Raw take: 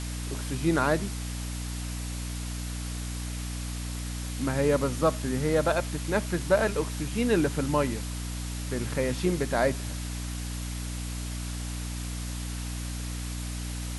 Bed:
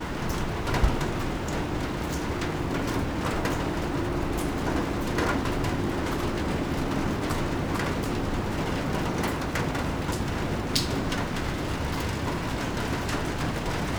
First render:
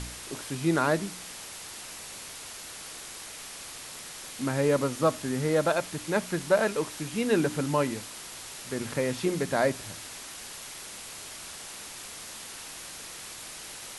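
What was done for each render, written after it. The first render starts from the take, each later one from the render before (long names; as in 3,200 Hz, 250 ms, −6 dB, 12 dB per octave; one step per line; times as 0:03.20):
hum removal 60 Hz, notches 5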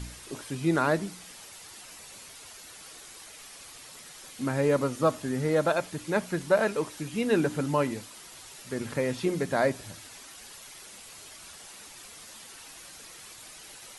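broadband denoise 8 dB, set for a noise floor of −43 dBFS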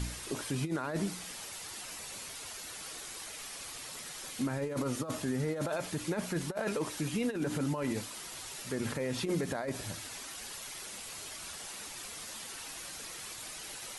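compressor whose output falls as the input rises −28 dBFS, ratio −0.5
brickwall limiter −24 dBFS, peak gain reduction 10.5 dB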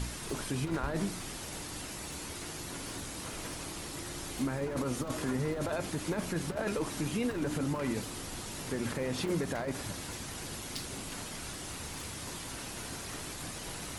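mix in bed −16 dB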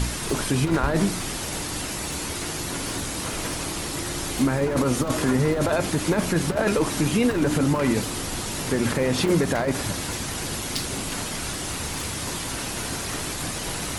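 level +11.5 dB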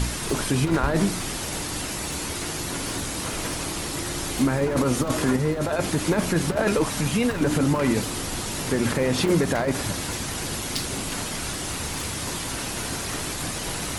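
0:05.36–0:05.79: tuned comb filter 76 Hz, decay 0.17 s
0:06.84–0:07.41: parametric band 340 Hz −14.5 dB 0.35 octaves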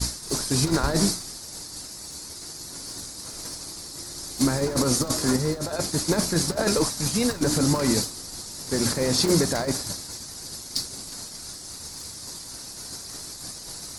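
downward expander −19 dBFS
high shelf with overshoot 3,700 Hz +7.5 dB, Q 3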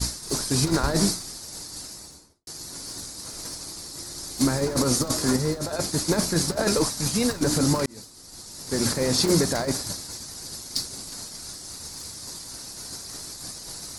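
0:01.88–0:02.47: fade out and dull
0:07.86–0:08.84: fade in linear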